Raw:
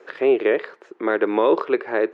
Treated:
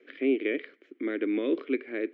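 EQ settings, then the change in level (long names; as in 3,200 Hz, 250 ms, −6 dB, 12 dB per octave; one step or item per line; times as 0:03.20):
formant filter i
parametric band 750 Hz +7 dB 1.2 octaves
+4.5 dB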